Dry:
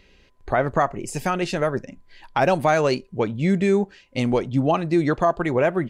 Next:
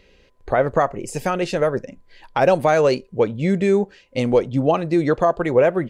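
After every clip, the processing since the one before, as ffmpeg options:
ffmpeg -i in.wav -af "equalizer=frequency=500:width=3.1:gain=8" out.wav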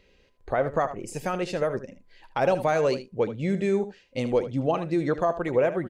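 ffmpeg -i in.wav -af "aecho=1:1:77:0.237,volume=-7dB" out.wav

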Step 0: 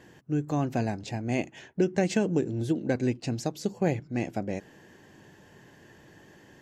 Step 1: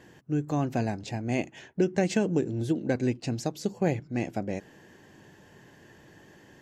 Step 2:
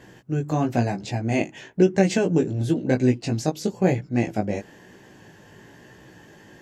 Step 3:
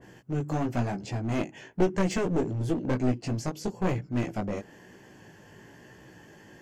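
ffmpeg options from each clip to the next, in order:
ffmpeg -i in.wav -af anull out.wav
ffmpeg -i in.wav -af "flanger=delay=15.5:depth=3.7:speed=1,volume=8.5dB" out.wav
ffmpeg -i in.wav -af "bandreject=frequency=3800:width=7.2,aeval=exprs='clip(val(0),-1,0.0562)':channel_layout=same,adynamicequalizer=threshold=0.00794:dfrequency=1700:dqfactor=0.7:tfrequency=1700:tqfactor=0.7:attack=5:release=100:ratio=0.375:range=2:mode=cutabove:tftype=highshelf,volume=-3dB" out.wav

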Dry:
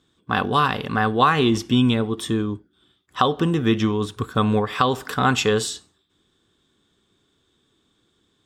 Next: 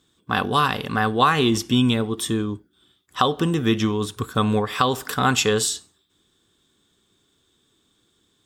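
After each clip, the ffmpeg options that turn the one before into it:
ffmpeg -i in.wav -af "highshelf=frequency=5900:gain=11,volume=-1dB" out.wav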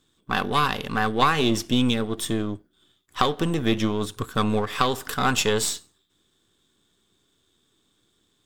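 ffmpeg -i in.wav -af "aeval=exprs='if(lt(val(0),0),0.447*val(0),val(0))':channel_layout=same" out.wav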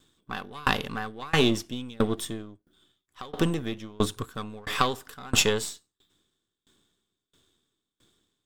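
ffmpeg -i in.wav -af "aeval=exprs='val(0)*pow(10,-29*if(lt(mod(1.5*n/s,1),2*abs(1.5)/1000),1-mod(1.5*n/s,1)/(2*abs(1.5)/1000),(mod(1.5*n/s,1)-2*abs(1.5)/1000)/(1-2*abs(1.5)/1000))/20)':channel_layout=same,volume=5dB" out.wav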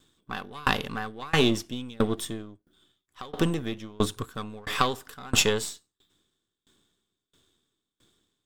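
ffmpeg -i in.wav -af anull out.wav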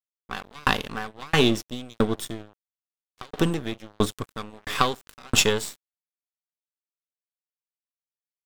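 ffmpeg -i in.wav -af "aeval=exprs='sgn(val(0))*max(abs(val(0))-0.00891,0)':channel_layout=same,volume=3dB" out.wav

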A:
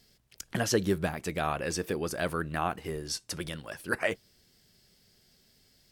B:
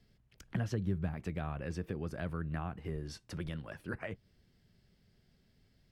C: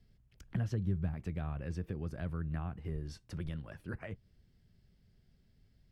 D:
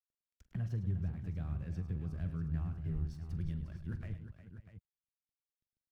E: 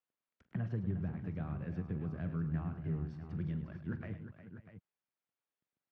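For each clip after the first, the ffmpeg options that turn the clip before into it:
ffmpeg -i in.wav -filter_complex "[0:a]bass=frequency=250:gain=8,treble=frequency=4000:gain=-14,acrossover=split=170[link_01][link_02];[link_02]acompressor=threshold=-33dB:ratio=5[link_03];[link_01][link_03]amix=inputs=2:normalize=0,volume=-5.5dB" out.wav
ffmpeg -i in.wav -af "lowshelf=frequency=150:gain=10.5,volume=-5dB" out.wav
ffmpeg -i in.wav -af "aeval=exprs='sgn(val(0))*max(abs(val(0))-0.0015,0)':channel_layout=same,asubboost=boost=5.5:cutoff=230,aecho=1:1:43|105|356|545|644:0.211|0.266|0.282|0.1|0.266,volume=-8dB" out.wav
ffmpeg -i in.wav -af "highpass=170,lowpass=2200,volume=6.5dB" out.wav

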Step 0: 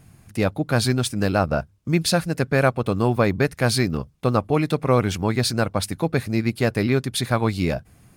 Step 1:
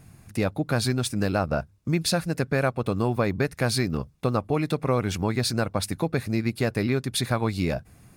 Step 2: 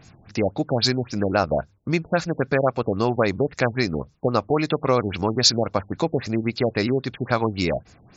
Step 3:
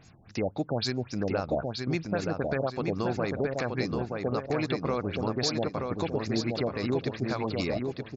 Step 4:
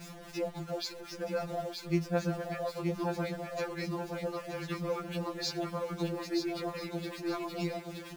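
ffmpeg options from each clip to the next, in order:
ffmpeg -i in.wav -af "bandreject=frequency=3100:width=17,acompressor=threshold=-23dB:ratio=2" out.wav
ffmpeg -i in.wav -af "bass=frequency=250:gain=-7,treble=frequency=4000:gain=11,afftfilt=real='re*lt(b*sr/1024,840*pow(7700/840,0.5+0.5*sin(2*PI*3.7*pts/sr)))':imag='im*lt(b*sr/1024,840*pow(7700/840,0.5+0.5*sin(2*PI*3.7*pts/sr)))':win_size=1024:overlap=0.75,volume=5.5dB" out.wav
ffmpeg -i in.wav -filter_complex "[0:a]alimiter=limit=-13.5dB:level=0:latency=1:release=92,asplit=2[link_01][link_02];[link_02]adelay=925,lowpass=frequency=4800:poles=1,volume=-4dB,asplit=2[link_03][link_04];[link_04]adelay=925,lowpass=frequency=4800:poles=1,volume=0.42,asplit=2[link_05][link_06];[link_06]adelay=925,lowpass=frequency=4800:poles=1,volume=0.42,asplit=2[link_07][link_08];[link_08]adelay=925,lowpass=frequency=4800:poles=1,volume=0.42,asplit=2[link_09][link_10];[link_10]adelay=925,lowpass=frequency=4800:poles=1,volume=0.42[link_11];[link_01][link_03][link_05][link_07][link_09][link_11]amix=inputs=6:normalize=0,volume=-6dB" out.wav
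ffmpeg -i in.wav -af "aeval=exprs='val(0)+0.5*0.0178*sgn(val(0))':channel_layout=same,afftfilt=real='re*2.83*eq(mod(b,8),0)':imag='im*2.83*eq(mod(b,8),0)':win_size=2048:overlap=0.75,volume=-4.5dB" out.wav

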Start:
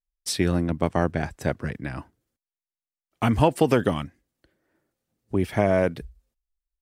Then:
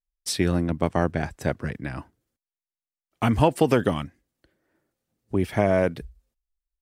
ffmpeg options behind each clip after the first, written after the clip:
ffmpeg -i in.wav -af anull out.wav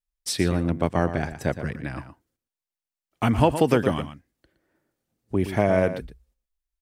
ffmpeg -i in.wav -filter_complex "[0:a]asplit=2[link_01][link_02];[link_02]adelay=116.6,volume=-11dB,highshelf=frequency=4000:gain=-2.62[link_03];[link_01][link_03]amix=inputs=2:normalize=0" out.wav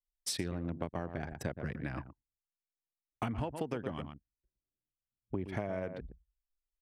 ffmpeg -i in.wav -af "acompressor=threshold=-27dB:ratio=12,anlmdn=0.398,volume=-5dB" out.wav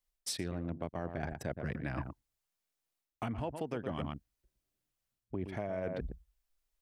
ffmpeg -i in.wav -af "equalizer=frequency=650:width_type=o:width=0.35:gain=3,areverse,acompressor=threshold=-42dB:ratio=6,areverse,volume=8dB" out.wav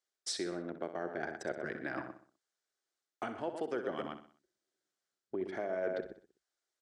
ffmpeg -i in.wav -filter_complex "[0:a]highpass=350,equalizer=frequency=370:width_type=q:width=4:gain=7,equalizer=frequency=990:width_type=q:width=4:gain=-5,equalizer=frequency=1500:width_type=q:width=4:gain=5,equalizer=frequency=2600:width_type=q:width=4:gain=-8,lowpass=frequency=8100:width=0.5412,lowpass=frequency=8100:width=1.3066,asplit=2[link_01][link_02];[link_02]aecho=0:1:63|126|189|252:0.282|0.121|0.0521|0.0224[link_03];[link_01][link_03]amix=inputs=2:normalize=0,volume=1.5dB" out.wav

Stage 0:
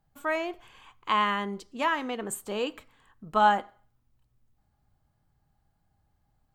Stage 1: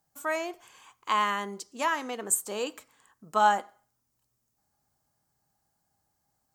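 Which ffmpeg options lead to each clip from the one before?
ffmpeg -i in.wav -af "highpass=frequency=340:poles=1,highshelf=frequency=4500:width_type=q:width=1.5:gain=8.5" out.wav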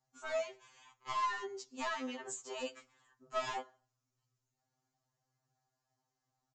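ffmpeg -i in.wav -af "flanger=delay=1:depth=9.7:regen=76:speed=0.78:shape=sinusoidal,aresample=16000,asoftclip=type=hard:threshold=-30dB,aresample=44100,afftfilt=real='re*2.45*eq(mod(b,6),0)':imag='im*2.45*eq(mod(b,6),0)':win_size=2048:overlap=0.75" out.wav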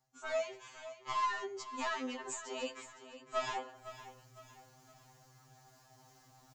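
ffmpeg -i in.wav -af "areverse,acompressor=mode=upward:threshold=-45dB:ratio=2.5,areverse,aecho=1:1:509|1018|1527|2036:0.211|0.0824|0.0321|0.0125,volume=1dB" out.wav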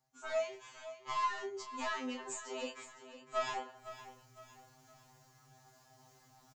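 ffmpeg -i in.wav -filter_complex "[0:a]asplit=2[link_01][link_02];[link_02]adelay=28,volume=-6dB[link_03];[link_01][link_03]amix=inputs=2:normalize=0,volume=-2dB" out.wav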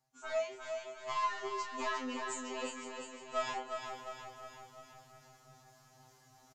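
ffmpeg -i in.wav -filter_complex "[0:a]asplit=2[link_01][link_02];[link_02]aecho=0:1:355:0.501[link_03];[link_01][link_03]amix=inputs=2:normalize=0,aresample=32000,aresample=44100,asplit=2[link_04][link_05];[link_05]aecho=0:1:709|1418|2127:0.282|0.0761|0.0205[link_06];[link_04][link_06]amix=inputs=2:normalize=0" out.wav

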